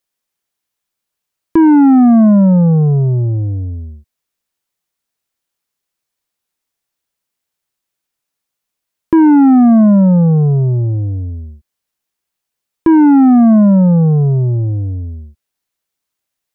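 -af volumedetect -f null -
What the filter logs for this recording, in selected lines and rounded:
mean_volume: -12.7 dB
max_volume: -4.9 dB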